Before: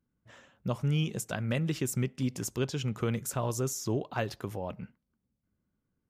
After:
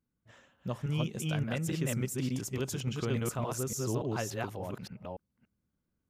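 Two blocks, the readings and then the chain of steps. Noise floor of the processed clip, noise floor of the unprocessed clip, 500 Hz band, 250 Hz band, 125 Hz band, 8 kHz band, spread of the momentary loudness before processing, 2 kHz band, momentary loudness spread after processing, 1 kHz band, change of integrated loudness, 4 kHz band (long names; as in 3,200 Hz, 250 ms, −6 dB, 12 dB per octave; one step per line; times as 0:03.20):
−83 dBFS, −83 dBFS, −1.5 dB, −1.5 dB, −1.5 dB, −1.0 dB, 8 LU, −1.0 dB, 11 LU, −1.5 dB, −1.5 dB, −1.5 dB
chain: delay that plays each chunk backwards 287 ms, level −0.5 dB
level −4 dB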